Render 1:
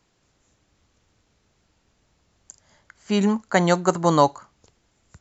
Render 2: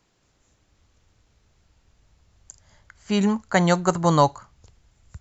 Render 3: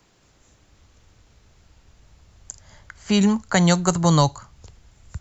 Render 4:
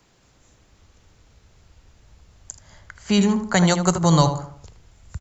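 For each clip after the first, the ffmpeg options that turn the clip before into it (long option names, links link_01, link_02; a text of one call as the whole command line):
ffmpeg -i in.wav -af "asubboost=boost=5:cutoff=120" out.wav
ffmpeg -i in.wav -filter_complex "[0:a]acrossover=split=170|3000[link_01][link_02][link_03];[link_02]acompressor=threshold=-33dB:ratio=2[link_04];[link_01][link_04][link_03]amix=inputs=3:normalize=0,volume=7.5dB" out.wav
ffmpeg -i in.wav -filter_complex "[0:a]asplit=2[link_01][link_02];[link_02]adelay=78,lowpass=frequency=1700:poles=1,volume=-7.5dB,asplit=2[link_03][link_04];[link_04]adelay=78,lowpass=frequency=1700:poles=1,volume=0.43,asplit=2[link_05][link_06];[link_06]adelay=78,lowpass=frequency=1700:poles=1,volume=0.43,asplit=2[link_07][link_08];[link_08]adelay=78,lowpass=frequency=1700:poles=1,volume=0.43,asplit=2[link_09][link_10];[link_10]adelay=78,lowpass=frequency=1700:poles=1,volume=0.43[link_11];[link_01][link_03][link_05][link_07][link_09][link_11]amix=inputs=6:normalize=0" out.wav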